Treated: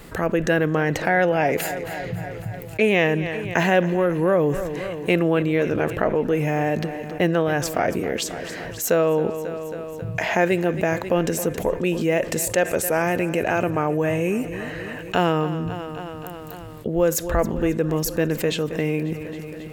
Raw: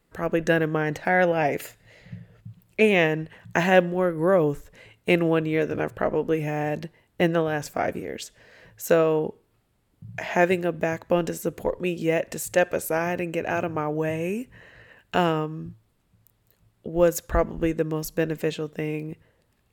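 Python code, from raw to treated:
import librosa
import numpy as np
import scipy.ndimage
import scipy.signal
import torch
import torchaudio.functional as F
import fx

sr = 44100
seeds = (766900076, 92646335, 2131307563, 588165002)

p1 = x + fx.echo_feedback(x, sr, ms=271, feedback_pct=58, wet_db=-19.0, dry=0)
p2 = fx.env_flatten(p1, sr, amount_pct=50)
y = F.gain(torch.from_numpy(p2), -2.0).numpy()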